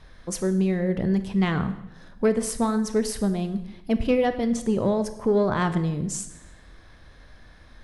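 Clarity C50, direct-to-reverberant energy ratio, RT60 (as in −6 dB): 12.0 dB, 10.0 dB, 0.90 s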